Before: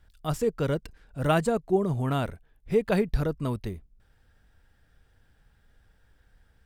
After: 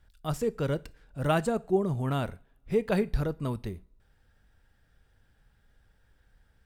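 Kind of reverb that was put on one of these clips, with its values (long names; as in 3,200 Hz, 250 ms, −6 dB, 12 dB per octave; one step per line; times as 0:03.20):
coupled-rooms reverb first 0.38 s, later 1.8 s, from −27 dB, DRR 16.5 dB
level −2.5 dB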